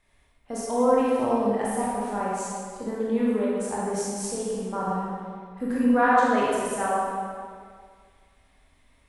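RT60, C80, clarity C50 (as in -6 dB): 2.0 s, -1.0 dB, -3.5 dB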